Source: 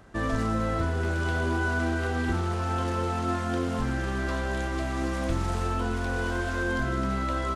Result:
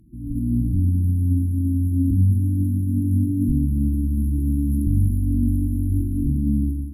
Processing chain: limiter -26 dBFS, peak gain reduction 10 dB; FFT band-reject 320–9600 Hz; flange 1 Hz, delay 4.4 ms, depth 7.6 ms, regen +86%; AGC gain up to 15.5 dB; speed mistake 44.1 kHz file played as 48 kHz; gain +5.5 dB

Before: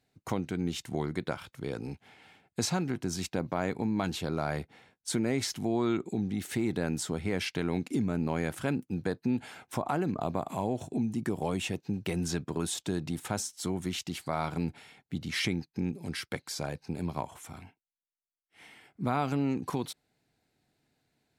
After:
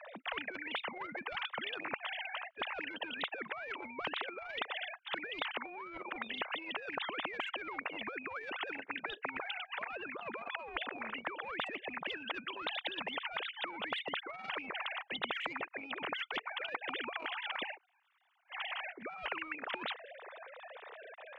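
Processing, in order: sine-wave speech; HPF 620 Hz 12 dB/oct; high shelf 2800 Hz -11.5 dB; reverse; compressor 12:1, threshold -48 dBFS, peak gain reduction 19 dB; reverse; spectral compressor 10:1; gain +17.5 dB

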